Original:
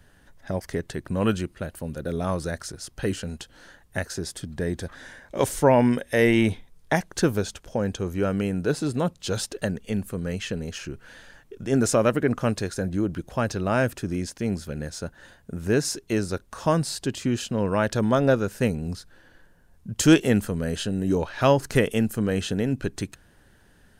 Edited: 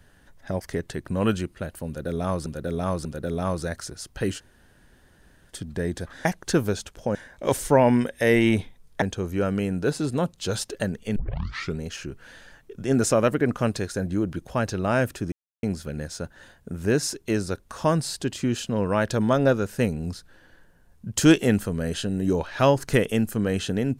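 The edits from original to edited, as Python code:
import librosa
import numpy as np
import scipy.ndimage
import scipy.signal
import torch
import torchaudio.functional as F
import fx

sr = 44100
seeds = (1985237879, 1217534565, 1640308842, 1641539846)

y = fx.edit(x, sr, fx.repeat(start_s=1.87, length_s=0.59, count=3),
    fx.room_tone_fill(start_s=3.21, length_s=1.12, crossfade_s=0.04),
    fx.move(start_s=6.94, length_s=0.9, to_s=5.07),
    fx.tape_start(start_s=9.98, length_s=0.63),
    fx.silence(start_s=14.14, length_s=0.31), tone=tone)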